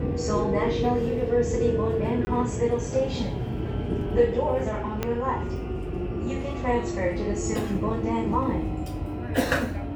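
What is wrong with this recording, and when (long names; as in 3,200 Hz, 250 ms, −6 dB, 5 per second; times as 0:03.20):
0:02.25–0:02.27: drop-out 20 ms
0:05.03: click −12 dBFS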